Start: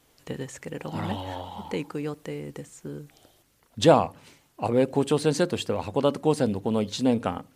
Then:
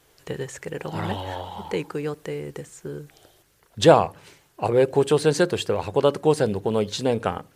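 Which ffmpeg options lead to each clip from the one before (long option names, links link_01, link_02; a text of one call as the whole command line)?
ffmpeg -i in.wav -af "equalizer=frequency=250:width_type=o:width=0.33:gain=-11,equalizer=frequency=400:width_type=o:width=0.33:gain=5,equalizer=frequency=1600:width_type=o:width=0.33:gain=4,volume=3dB" out.wav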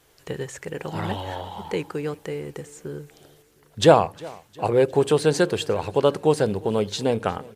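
ffmpeg -i in.wav -af "aecho=1:1:356|712|1068|1424:0.0708|0.0396|0.0222|0.0124" out.wav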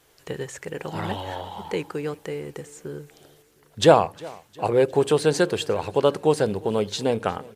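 ffmpeg -i in.wav -af "lowshelf=frequency=170:gain=-3.5" out.wav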